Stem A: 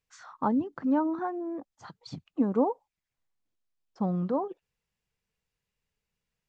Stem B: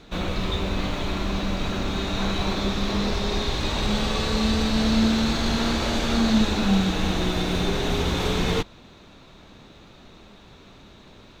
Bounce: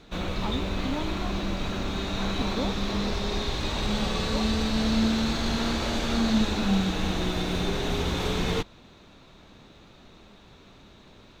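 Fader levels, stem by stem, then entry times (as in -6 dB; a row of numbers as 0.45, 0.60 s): -8.0, -3.5 dB; 0.00, 0.00 s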